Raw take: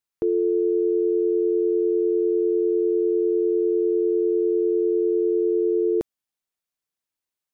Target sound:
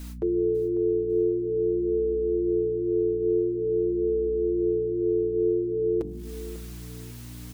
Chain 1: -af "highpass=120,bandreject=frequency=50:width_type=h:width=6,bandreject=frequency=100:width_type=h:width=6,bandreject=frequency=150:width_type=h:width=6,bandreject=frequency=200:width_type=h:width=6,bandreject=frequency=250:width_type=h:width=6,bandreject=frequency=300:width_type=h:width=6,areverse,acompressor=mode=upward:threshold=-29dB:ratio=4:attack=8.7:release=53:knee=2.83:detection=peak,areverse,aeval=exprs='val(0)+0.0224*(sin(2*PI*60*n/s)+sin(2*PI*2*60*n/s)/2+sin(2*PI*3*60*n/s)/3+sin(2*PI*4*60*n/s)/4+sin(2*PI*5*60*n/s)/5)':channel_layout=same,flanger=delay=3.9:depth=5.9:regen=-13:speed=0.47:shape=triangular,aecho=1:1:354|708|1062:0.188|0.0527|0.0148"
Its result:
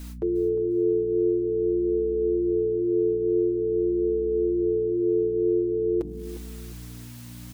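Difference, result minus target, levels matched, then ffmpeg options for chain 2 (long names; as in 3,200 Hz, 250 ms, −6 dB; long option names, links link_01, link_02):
echo 193 ms early
-af "highpass=120,bandreject=frequency=50:width_type=h:width=6,bandreject=frequency=100:width_type=h:width=6,bandreject=frequency=150:width_type=h:width=6,bandreject=frequency=200:width_type=h:width=6,bandreject=frequency=250:width_type=h:width=6,bandreject=frequency=300:width_type=h:width=6,areverse,acompressor=mode=upward:threshold=-29dB:ratio=4:attack=8.7:release=53:knee=2.83:detection=peak,areverse,aeval=exprs='val(0)+0.0224*(sin(2*PI*60*n/s)+sin(2*PI*2*60*n/s)/2+sin(2*PI*3*60*n/s)/3+sin(2*PI*4*60*n/s)/4+sin(2*PI*5*60*n/s)/5)':channel_layout=same,flanger=delay=3.9:depth=5.9:regen=-13:speed=0.47:shape=triangular,aecho=1:1:547|1094|1641:0.188|0.0527|0.0148"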